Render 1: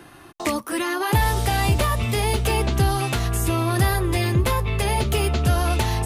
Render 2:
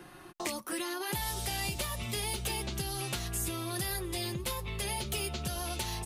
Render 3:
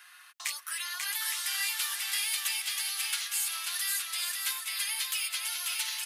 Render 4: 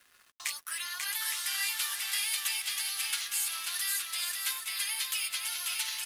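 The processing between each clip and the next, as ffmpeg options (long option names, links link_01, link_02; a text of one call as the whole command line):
ffmpeg -i in.wav -filter_complex "[0:a]aecho=1:1:5.5:0.43,acrossover=split=2900[link_01][link_02];[link_01]acompressor=threshold=-29dB:ratio=6[link_03];[link_03][link_02]amix=inputs=2:normalize=0,volume=-6dB" out.wav
ffmpeg -i in.wav -filter_complex "[0:a]highpass=frequency=1400:width=0.5412,highpass=frequency=1400:width=1.3066,asplit=2[link_01][link_02];[link_02]aecho=0:1:540|864|1058|1175|1245:0.631|0.398|0.251|0.158|0.1[link_03];[link_01][link_03]amix=inputs=2:normalize=0,volume=4dB" out.wav
ffmpeg -i in.wav -af "aeval=exprs='sgn(val(0))*max(abs(val(0))-0.00224,0)':channel_layout=same" out.wav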